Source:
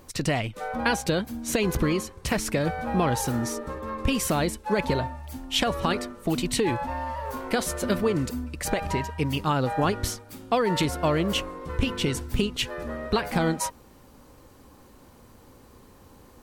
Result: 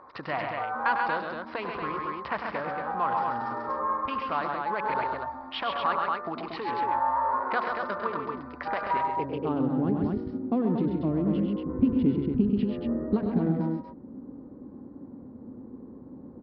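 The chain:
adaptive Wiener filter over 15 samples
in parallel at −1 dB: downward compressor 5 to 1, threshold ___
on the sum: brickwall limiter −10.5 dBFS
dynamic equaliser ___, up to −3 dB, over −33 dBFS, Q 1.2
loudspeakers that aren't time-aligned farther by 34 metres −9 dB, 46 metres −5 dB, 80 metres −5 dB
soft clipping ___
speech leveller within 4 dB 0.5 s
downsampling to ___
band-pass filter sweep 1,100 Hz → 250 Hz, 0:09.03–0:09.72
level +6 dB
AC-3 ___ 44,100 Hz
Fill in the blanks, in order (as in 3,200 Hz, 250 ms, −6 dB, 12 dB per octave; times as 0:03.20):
−39 dBFS, 490 Hz, −12.5 dBFS, 11,025 Hz, 64 kbit/s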